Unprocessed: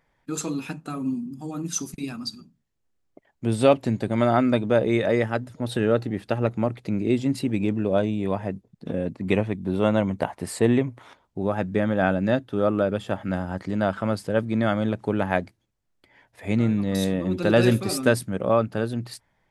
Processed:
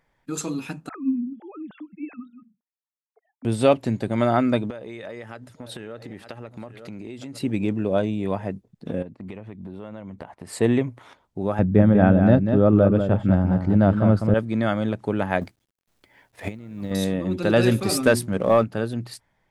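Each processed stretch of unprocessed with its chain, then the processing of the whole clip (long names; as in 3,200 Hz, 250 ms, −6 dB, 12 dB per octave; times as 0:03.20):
0:00.89–0:03.45: three sine waves on the formant tracks + low-pass that shuts in the quiet parts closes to 1,600 Hz, open at −21.5 dBFS
0:04.70–0:07.41: low-shelf EQ 470 Hz −6.5 dB + single-tap delay 908 ms −20.5 dB + downward compressor 10 to 1, threshold −32 dBFS
0:09.02–0:10.53: noise gate −41 dBFS, range −8 dB + high-shelf EQ 4,800 Hz −9 dB + downward compressor 8 to 1, threshold −33 dBFS
0:11.59–0:14.34: spectral tilt −3.5 dB per octave + single-tap delay 194 ms −7 dB
0:15.41–0:16.91: mu-law and A-law mismatch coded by A + compressor whose output falls as the input rises −30 dBFS, ratio −0.5
0:17.78–0:18.64: mains-hum notches 60/120/180/240/300/360 Hz + leveller curve on the samples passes 1
whole clip: no processing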